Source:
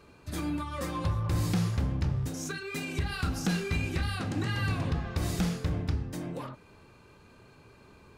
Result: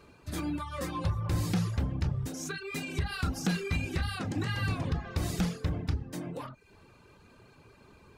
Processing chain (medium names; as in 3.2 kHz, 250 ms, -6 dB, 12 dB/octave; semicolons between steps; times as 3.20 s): reverb removal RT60 0.57 s